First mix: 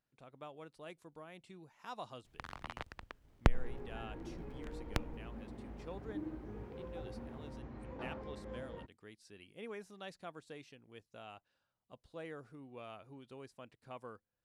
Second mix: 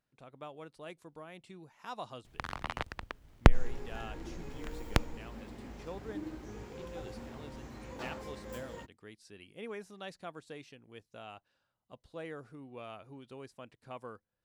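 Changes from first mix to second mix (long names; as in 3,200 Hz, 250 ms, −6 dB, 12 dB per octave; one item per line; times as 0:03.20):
speech +3.5 dB
first sound +8.0 dB
second sound: remove head-to-tape spacing loss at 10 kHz 40 dB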